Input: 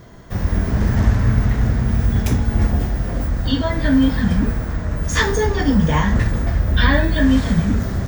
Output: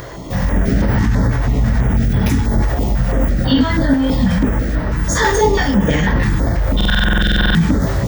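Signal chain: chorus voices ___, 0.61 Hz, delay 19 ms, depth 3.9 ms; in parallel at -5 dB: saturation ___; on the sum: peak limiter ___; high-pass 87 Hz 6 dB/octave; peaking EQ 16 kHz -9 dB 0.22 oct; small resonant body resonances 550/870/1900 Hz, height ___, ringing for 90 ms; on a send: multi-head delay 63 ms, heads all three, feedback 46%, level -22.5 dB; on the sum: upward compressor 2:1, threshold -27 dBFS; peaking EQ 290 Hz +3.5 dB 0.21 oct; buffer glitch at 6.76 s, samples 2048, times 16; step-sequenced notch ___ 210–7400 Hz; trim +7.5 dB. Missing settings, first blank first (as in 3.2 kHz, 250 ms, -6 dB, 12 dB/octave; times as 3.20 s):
6, -16 dBFS, -11.5 dBFS, 8 dB, 6.1 Hz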